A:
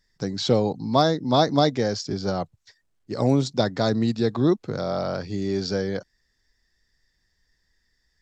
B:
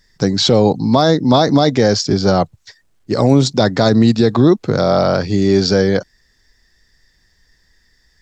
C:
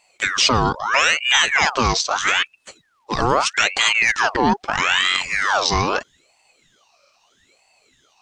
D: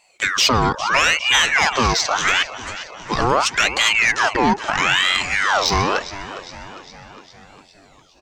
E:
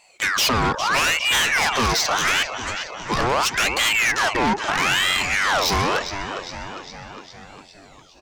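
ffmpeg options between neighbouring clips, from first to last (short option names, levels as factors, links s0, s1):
-af "alimiter=level_in=5.01:limit=0.891:release=50:level=0:latency=1,volume=0.891"
-af "equalizer=f=2600:w=0.36:g=9,aeval=exprs='val(0)*sin(2*PI*1600*n/s+1600*0.65/0.78*sin(2*PI*0.78*n/s))':c=same,volume=0.562"
-filter_complex "[0:a]asplit=7[s0][s1][s2][s3][s4][s5][s6];[s1]adelay=406,afreqshift=-73,volume=0.168[s7];[s2]adelay=812,afreqshift=-146,volume=0.0989[s8];[s3]adelay=1218,afreqshift=-219,volume=0.0582[s9];[s4]adelay=1624,afreqshift=-292,volume=0.0347[s10];[s5]adelay=2030,afreqshift=-365,volume=0.0204[s11];[s6]adelay=2436,afreqshift=-438,volume=0.012[s12];[s0][s7][s8][s9][s10][s11][s12]amix=inputs=7:normalize=0,acontrast=43,volume=0.631"
-af "asoftclip=type=tanh:threshold=0.119,volume=1.41"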